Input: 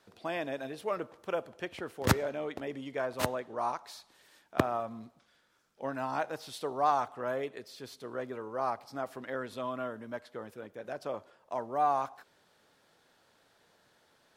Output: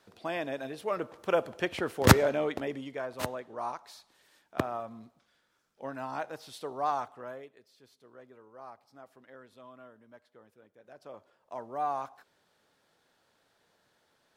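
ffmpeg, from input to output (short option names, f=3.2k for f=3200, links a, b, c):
-af "volume=18.5dB,afade=t=in:st=0.89:d=0.58:silence=0.473151,afade=t=out:st=2.32:d=0.68:silence=0.298538,afade=t=out:st=6.98:d=0.53:silence=0.251189,afade=t=in:st=10.84:d=0.84:silence=0.281838"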